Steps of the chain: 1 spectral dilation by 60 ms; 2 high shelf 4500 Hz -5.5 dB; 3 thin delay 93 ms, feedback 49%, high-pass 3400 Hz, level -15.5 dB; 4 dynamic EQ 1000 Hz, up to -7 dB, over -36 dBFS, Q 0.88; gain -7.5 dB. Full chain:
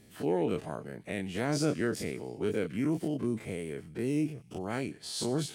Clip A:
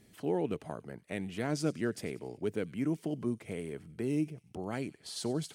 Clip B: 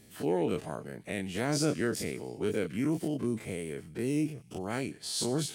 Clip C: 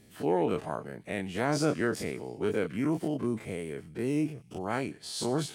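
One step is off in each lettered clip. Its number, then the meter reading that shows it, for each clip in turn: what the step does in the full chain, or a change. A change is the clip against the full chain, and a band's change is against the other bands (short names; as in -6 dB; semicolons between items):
1, 8 kHz band -1.5 dB; 2, 8 kHz band +4.0 dB; 4, 1 kHz band +5.0 dB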